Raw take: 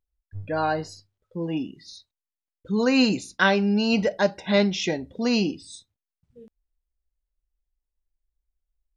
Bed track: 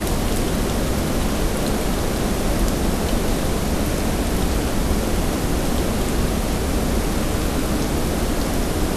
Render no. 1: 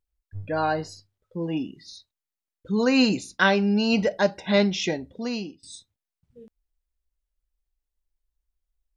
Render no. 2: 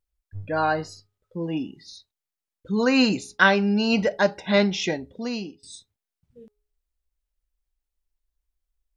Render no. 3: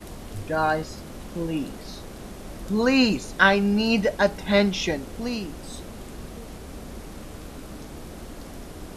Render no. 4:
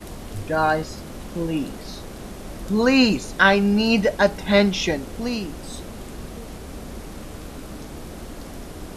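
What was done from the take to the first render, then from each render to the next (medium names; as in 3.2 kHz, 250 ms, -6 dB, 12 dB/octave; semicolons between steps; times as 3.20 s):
4.85–5.63 s: fade out, to -22.5 dB
de-hum 417.8 Hz, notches 3; dynamic bell 1.4 kHz, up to +4 dB, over -34 dBFS, Q 1
add bed track -18 dB
trim +3 dB; peak limiter -3 dBFS, peak gain reduction 2.5 dB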